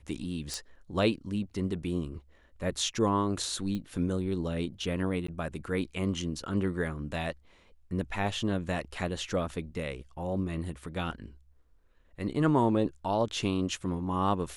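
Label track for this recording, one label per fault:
0.540000	0.540000	pop
3.750000	3.750000	pop -24 dBFS
5.270000	5.280000	gap 14 ms

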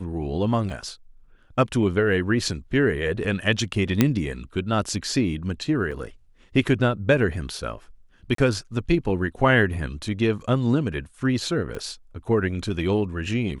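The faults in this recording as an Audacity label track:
0.700000	0.700000	gap 3.2 ms
4.010000	4.010000	pop -3 dBFS
5.910000	5.920000	gap 5.5 ms
8.350000	8.380000	gap 33 ms
11.750000	11.750000	pop -21 dBFS

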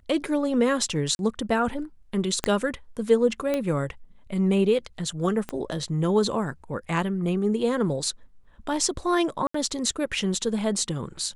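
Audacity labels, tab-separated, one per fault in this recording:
1.150000	1.190000	gap 41 ms
2.440000	2.440000	pop -8 dBFS
3.540000	3.540000	pop -13 dBFS
5.490000	5.490000	pop -17 dBFS
9.470000	9.540000	gap 74 ms

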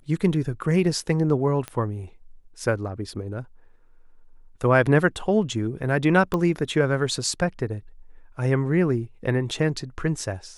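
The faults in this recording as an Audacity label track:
1.680000	1.680000	pop -16 dBFS
6.340000	6.340000	pop -13 dBFS

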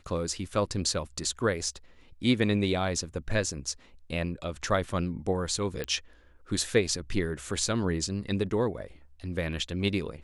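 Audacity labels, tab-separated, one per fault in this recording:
5.840000	5.840000	pop -17 dBFS

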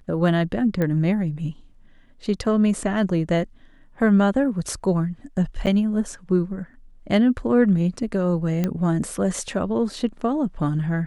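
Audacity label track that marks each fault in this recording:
0.820000	0.820000	pop -13 dBFS
5.660000	5.670000	gap 8.4 ms
8.640000	8.640000	pop -11 dBFS

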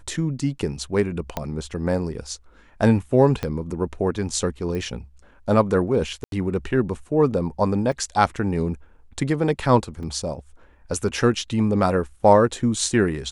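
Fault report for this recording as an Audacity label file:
1.370000	1.370000	pop -11 dBFS
3.430000	3.430000	pop -12 dBFS
4.750000	4.750000	pop -19 dBFS
6.240000	6.320000	gap 82 ms
7.920000	7.920000	gap 2.8 ms
10.030000	10.030000	gap 4.1 ms

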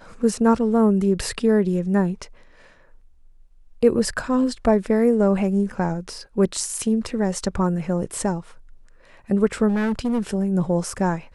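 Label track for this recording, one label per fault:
9.680000	10.210000	clipped -18.5 dBFS

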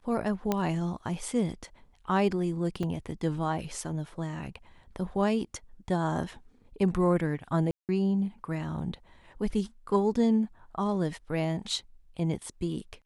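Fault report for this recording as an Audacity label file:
0.520000	0.520000	pop -13 dBFS
2.830000	2.830000	gap 4.3 ms
7.710000	7.890000	gap 0.178 s

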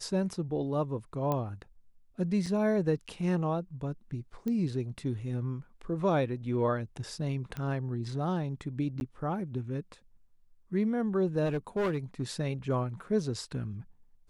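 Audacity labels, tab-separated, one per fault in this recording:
1.320000	1.320000	pop -18 dBFS
2.460000	2.460000	gap 4.6 ms
4.480000	4.480000	pop -23 dBFS
7.570000	7.570000	pop -24 dBFS
9.000000	9.010000	gap 11 ms
11.450000	12.230000	clipped -26 dBFS

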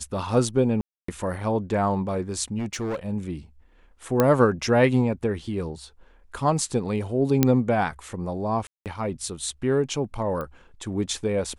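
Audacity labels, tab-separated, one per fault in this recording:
0.810000	1.080000	gap 0.274 s
2.580000	2.960000	clipped -25 dBFS
4.200000	4.200000	pop -6 dBFS
7.430000	7.430000	pop -4 dBFS
8.670000	8.860000	gap 0.188 s
10.410000	10.410000	pop -20 dBFS

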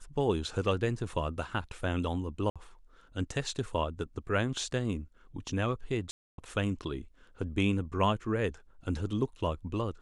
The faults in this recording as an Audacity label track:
2.500000	2.560000	gap 56 ms
6.110000	6.380000	gap 0.272 s

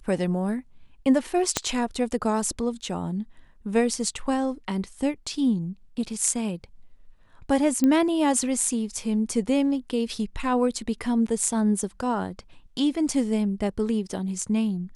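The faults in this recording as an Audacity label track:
1.570000	1.570000	pop -6 dBFS
7.840000	7.840000	pop -11 dBFS

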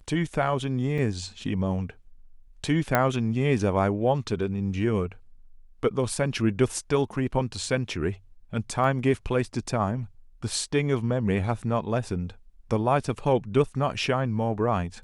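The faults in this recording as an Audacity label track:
0.980000	0.980000	gap 4.5 ms
2.950000	2.950000	pop -7 dBFS
8.840000	8.840000	gap 2 ms

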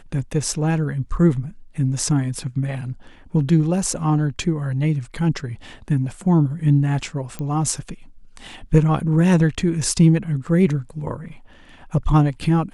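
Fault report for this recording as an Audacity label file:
7.390000	7.390000	pop -16 dBFS

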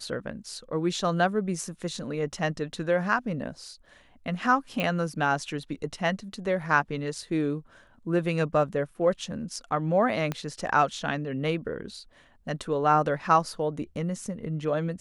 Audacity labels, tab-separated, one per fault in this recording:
4.800000	4.800000	pop -16 dBFS
10.320000	10.320000	pop -16 dBFS

